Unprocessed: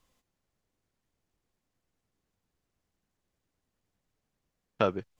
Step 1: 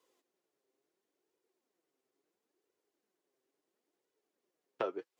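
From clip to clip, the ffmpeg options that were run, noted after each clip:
-filter_complex "[0:a]highpass=f=370:t=q:w=3.8,acrossover=split=600|1700[a][b][c];[a]acompressor=threshold=-36dB:ratio=4[d];[b]acompressor=threshold=-33dB:ratio=4[e];[c]acompressor=threshold=-47dB:ratio=4[f];[d][e][f]amix=inputs=3:normalize=0,flanger=delay=2:depth=5.7:regen=40:speed=0.73:shape=sinusoidal"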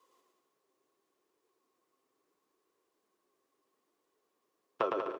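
-filter_complex "[0:a]equalizer=f=1.1k:w=6.6:g=14,asplit=2[a][b];[b]aecho=0:1:110|192.5|254.4|300.8|335.6:0.631|0.398|0.251|0.158|0.1[c];[a][c]amix=inputs=2:normalize=0,volume=2dB"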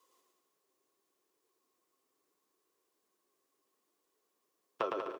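-af "highshelf=f=4k:g=8.5,volume=-3.5dB"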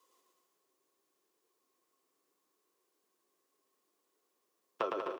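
-af "highpass=120,aecho=1:1:260:0.376"

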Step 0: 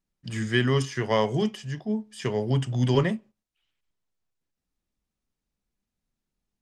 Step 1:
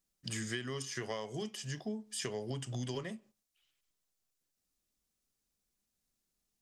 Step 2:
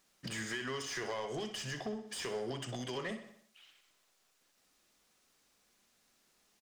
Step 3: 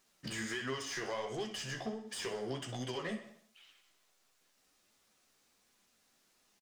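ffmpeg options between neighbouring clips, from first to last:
-af "bass=f=250:g=-5,treble=f=4k:g=10,acompressor=threshold=-33dB:ratio=16,bandreject=f=910:w=15,volume=-2dB"
-filter_complex "[0:a]acompressor=threshold=-47dB:ratio=6,asplit=2[a][b];[b]highpass=f=720:p=1,volume=21dB,asoftclip=type=tanh:threshold=-32.5dB[c];[a][c]amix=inputs=2:normalize=0,lowpass=f=2.5k:p=1,volume=-6dB,asplit=2[d][e];[e]aecho=0:1:62|124|186|248|310|372:0.266|0.146|0.0805|0.0443|0.0243|0.0134[f];[d][f]amix=inputs=2:normalize=0,volume=5dB"
-filter_complex "[0:a]flanger=delay=7.1:depth=8.7:regen=38:speed=1.4:shape=triangular,asplit=2[a][b];[b]adelay=18,volume=-12.5dB[c];[a][c]amix=inputs=2:normalize=0,volume=3.5dB"

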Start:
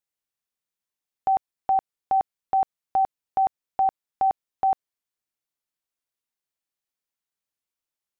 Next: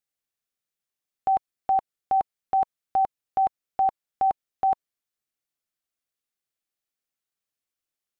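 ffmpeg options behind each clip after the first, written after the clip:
-af "bandreject=f=950:w=6.3"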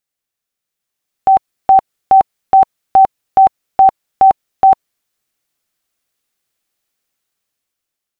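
-af "dynaudnorm=f=310:g=7:m=8.5dB,volume=6dB"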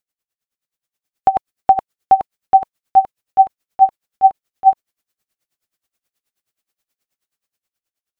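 -af "aeval=exprs='val(0)*pow(10,-22*(0.5-0.5*cos(2*PI*9.4*n/s))/20)':c=same,volume=1dB"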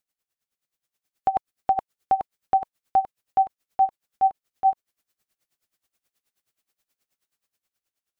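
-af "alimiter=limit=-12.5dB:level=0:latency=1:release=275"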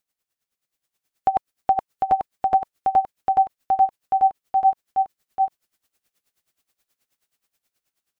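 -af "aecho=1:1:750:0.668,volume=2.5dB"

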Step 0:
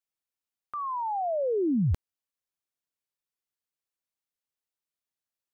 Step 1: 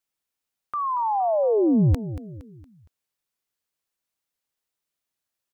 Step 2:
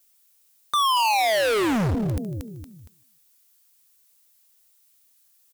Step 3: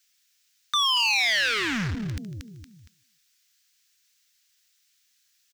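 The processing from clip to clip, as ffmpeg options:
-af "aecho=1:1:232|464|696|928:0.211|0.0888|0.0373|0.0157,volume=6.5dB"
-filter_complex "[0:a]asplit=3[a][b][c];[b]adelay=151,afreqshift=38,volume=-22.5dB[d];[c]adelay=302,afreqshift=76,volume=-31.9dB[e];[a][d][e]amix=inputs=3:normalize=0,volume=29dB,asoftclip=hard,volume=-29dB,crystalizer=i=4:c=0,volume=7.5dB"
-af "firequalizer=gain_entry='entry(210,0);entry(560,-14);entry(1600,10);entry(5800,9);entry(10000,-5)':delay=0.05:min_phase=1,volume=-5.5dB"

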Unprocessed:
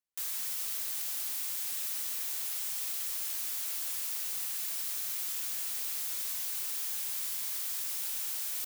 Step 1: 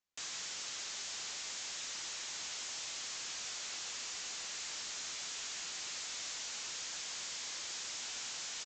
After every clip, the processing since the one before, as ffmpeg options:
-filter_complex "[0:a]aresample=16000,asoftclip=type=tanh:threshold=-39.5dB,aresample=44100,asplit=2[a][b];[b]adelay=12,volume=-12dB[c];[a][c]amix=inputs=2:normalize=0,volume=3.5dB"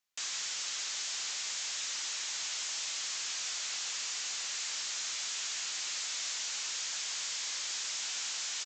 -af "tiltshelf=f=640:g=-6"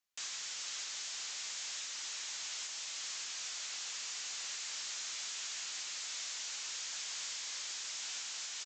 -af "alimiter=level_in=5dB:limit=-24dB:level=0:latency=1:release=440,volume=-5dB,volume=-3.5dB"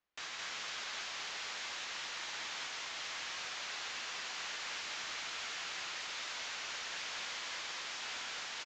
-af "adynamicsmooth=sensitivity=1:basefreq=2.5k,aecho=1:1:55.39|215.7:0.251|0.794,volume=8dB"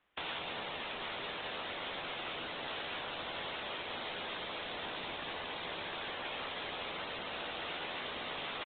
-af "afftfilt=real='re*lt(hypot(re,im),0.01)':imag='im*lt(hypot(re,im),0.01)':win_size=1024:overlap=0.75,aresample=8000,aresample=44100,volume=13dB"

